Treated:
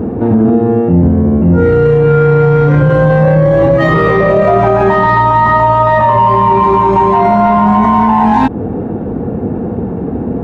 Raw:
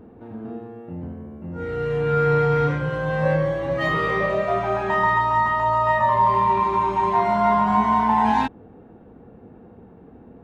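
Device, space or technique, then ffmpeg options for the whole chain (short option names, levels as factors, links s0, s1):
mastering chain: -af "highpass=58,equalizer=f=3200:t=o:w=0.77:g=-2,acompressor=threshold=0.0398:ratio=1.5,asoftclip=type=tanh:threshold=0.168,tiltshelf=f=900:g=5.5,alimiter=level_in=18.8:limit=0.891:release=50:level=0:latency=1,volume=0.891"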